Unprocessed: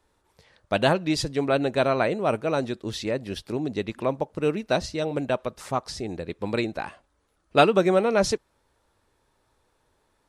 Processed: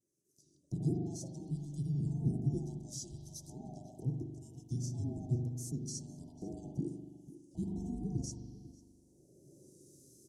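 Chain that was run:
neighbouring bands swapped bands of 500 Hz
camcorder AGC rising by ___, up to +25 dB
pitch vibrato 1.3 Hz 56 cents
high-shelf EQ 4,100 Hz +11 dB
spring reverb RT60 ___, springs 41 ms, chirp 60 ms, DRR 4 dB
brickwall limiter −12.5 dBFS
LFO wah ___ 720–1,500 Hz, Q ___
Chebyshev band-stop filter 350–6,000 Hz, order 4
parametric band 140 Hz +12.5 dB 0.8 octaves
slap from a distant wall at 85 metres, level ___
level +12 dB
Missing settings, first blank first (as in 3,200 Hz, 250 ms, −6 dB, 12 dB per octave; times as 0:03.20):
17 dB per second, 1.7 s, 0.72 Hz, 3.9, −16 dB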